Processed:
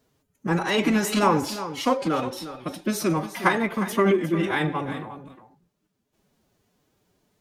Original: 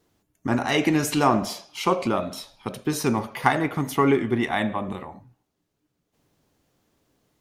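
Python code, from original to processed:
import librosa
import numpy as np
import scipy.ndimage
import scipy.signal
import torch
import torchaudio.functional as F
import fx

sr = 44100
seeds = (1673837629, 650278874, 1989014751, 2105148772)

y = fx.pitch_keep_formants(x, sr, semitones=6.0)
y = y + 10.0 ** (-12.5 / 20.0) * np.pad(y, (int(356 * sr / 1000.0), 0))[:len(y)]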